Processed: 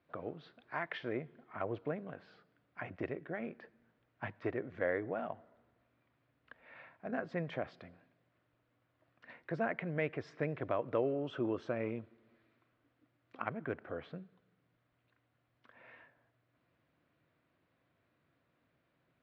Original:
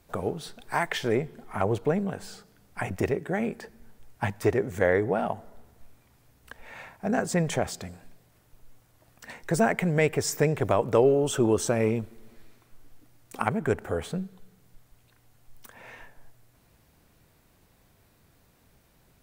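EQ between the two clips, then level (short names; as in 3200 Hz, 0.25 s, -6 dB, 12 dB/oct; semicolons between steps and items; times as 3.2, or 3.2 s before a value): air absorption 400 m; speaker cabinet 180–5600 Hz, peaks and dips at 200 Hz -10 dB, 420 Hz -8 dB, 840 Hz -9 dB; -6.5 dB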